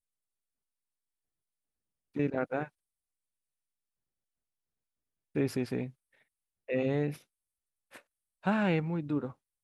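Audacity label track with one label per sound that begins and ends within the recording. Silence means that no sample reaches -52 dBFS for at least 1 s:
2.150000	2.680000	sound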